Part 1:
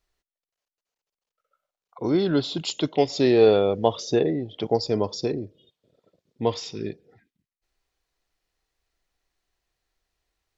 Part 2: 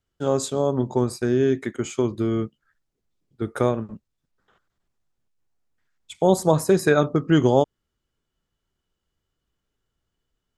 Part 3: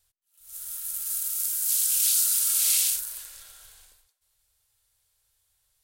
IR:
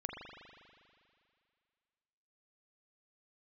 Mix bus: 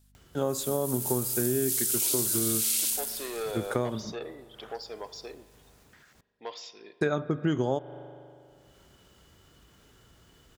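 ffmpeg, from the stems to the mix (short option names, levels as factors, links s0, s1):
-filter_complex "[0:a]asoftclip=type=tanh:threshold=0.211,highpass=680,deesser=0.75,volume=0.355,asplit=2[s0][s1];[s1]volume=0.266[s2];[1:a]highpass=51,acompressor=mode=upward:threshold=0.0178:ratio=2.5,adelay=150,volume=0.668,asplit=3[s3][s4][s5];[s3]atrim=end=6.21,asetpts=PTS-STARTPTS,afade=t=out:st=6.206:d=0.004:c=hsin[s6];[s4]atrim=start=6.21:end=7.01,asetpts=PTS-STARTPTS,volume=0[s7];[s5]atrim=start=7.01,asetpts=PTS-STARTPTS,afade=t=in:d=0.004:c=hsin[s8];[s6][s7][s8]concat=n=3:v=0:a=1,asplit=2[s9][s10];[s10]volume=0.158[s11];[2:a]aeval=exprs='val(0)+0.000794*(sin(2*PI*50*n/s)+sin(2*PI*2*50*n/s)/2+sin(2*PI*3*50*n/s)/3+sin(2*PI*4*50*n/s)/4+sin(2*PI*5*50*n/s)/5)':c=same,volume=1.06[s12];[3:a]atrim=start_sample=2205[s13];[s2][s11]amix=inputs=2:normalize=0[s14];[s14][s13]afir=irnorm=-1:irlink=0[s15];[s0][s9][s12][s15]amix=inputs=4:normalize=0,acompressor=threshold=0.0631:ratio=4"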